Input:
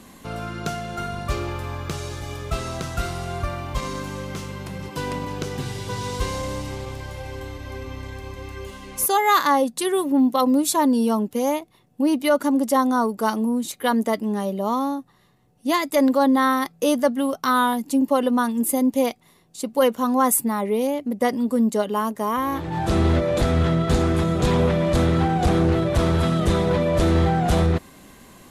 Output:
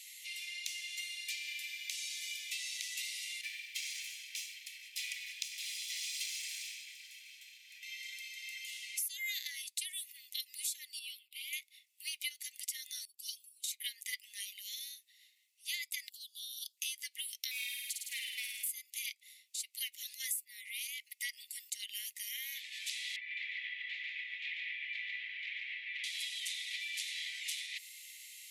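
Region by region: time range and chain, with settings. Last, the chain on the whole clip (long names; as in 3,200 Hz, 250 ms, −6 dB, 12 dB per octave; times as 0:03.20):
0:03.41–0:07.83: lower of the sound and its delayed copy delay 1.2 ms + multiband upward and downward expander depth 100%
0:10.99–0:11.53: low-pass filter 3,900 Hz 6 dB per octave + phaser with its sweep stopped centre 1,800 Hz, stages 6
0:13.05–0:13.64: inverse Chebyshev band-stop filter 270–1,400 Hz, stop band 50 dB + stiff-string resonator 73 Hz, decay 0.21 s, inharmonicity 0.008 + multiband upward and downward expander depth 100%
0:16.09–0:16.77: downward compressor 3 to 1, threshold −28 dBFS + Butterworth high-pass 3,000 Hz 96 dB per octave
0:17.51–0:18.71: tube saturation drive 18 dB, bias 0.3 + flutter between parallel walls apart 9 metres, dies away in 0.92 s
0:23.16–0:26.04: low-pass filter 2,400 Hz 24 dB per octave + single-tap delay 144 ms −3 dB
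whole clip: Butterworth high-pass 2,000 Hz 96 dB per octave; downward compressor, threshold −39 dBFS; level +2 dB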